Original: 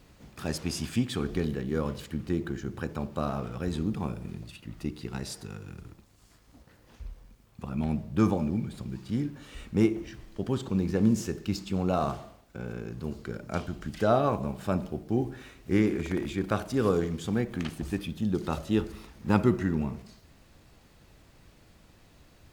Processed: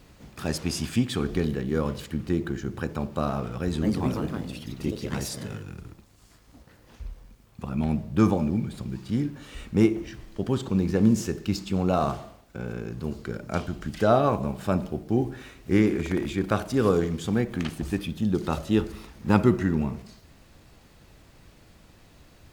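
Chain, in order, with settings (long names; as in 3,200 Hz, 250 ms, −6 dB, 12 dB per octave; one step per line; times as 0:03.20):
0:03.59–0:05.74: delay with pitch and tempo change per echo 221 ms, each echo +3 semitones, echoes 2
level +3.5 dB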